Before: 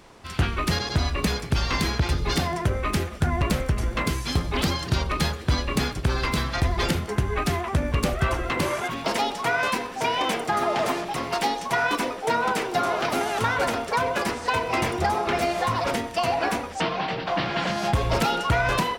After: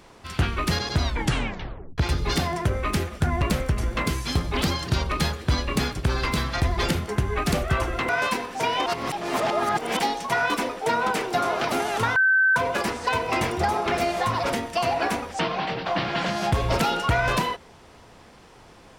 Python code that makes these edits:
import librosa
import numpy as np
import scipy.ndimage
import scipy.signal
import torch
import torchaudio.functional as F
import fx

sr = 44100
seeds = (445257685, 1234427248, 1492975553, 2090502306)

y = fx.edit(x, sr, fx.tape_stop(start_s=1.02, length_s=0.96),
    fx.cut(start_s=7.52, length_s=0.51),
    fx.cut(start_s=8.6, length_s=0.9),
    fx.reverse_span(start_s=10.27, length_s=1.13),
    fx.bleep(start_s=13.57, length_s=0.4, hz=1540.0, db=-15.5), tone=tone)